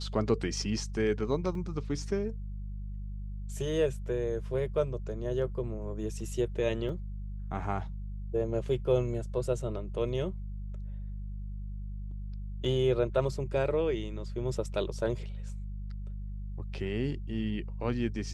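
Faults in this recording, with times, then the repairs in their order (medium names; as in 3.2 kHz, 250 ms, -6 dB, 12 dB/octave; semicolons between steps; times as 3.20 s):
hum 50 Hz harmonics 4 -38 dBFS
1.55 s: dropout 2.1 ms
6.89 s: dropout 2.8 ms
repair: de-hum 50 Hz, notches 4; interpolate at 1.55 s, 2.1 ms; interpolate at 6.89 s, 2.8 ms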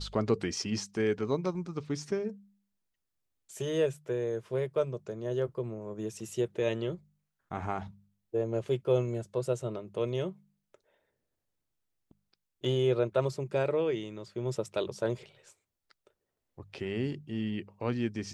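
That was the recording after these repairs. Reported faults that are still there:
nothing left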